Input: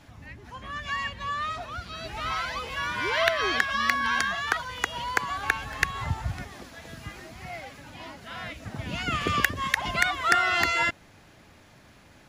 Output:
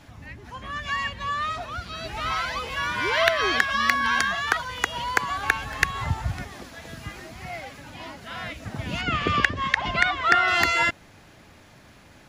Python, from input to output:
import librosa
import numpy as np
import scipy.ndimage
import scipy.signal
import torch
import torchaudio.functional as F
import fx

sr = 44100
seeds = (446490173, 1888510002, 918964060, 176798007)

y = fx.lowpass(x, sr, hz=4400.0, slope=12, at=(9.01, 10.48))
y = F.gain(torch.from_numpy(y), 3.0).numpy()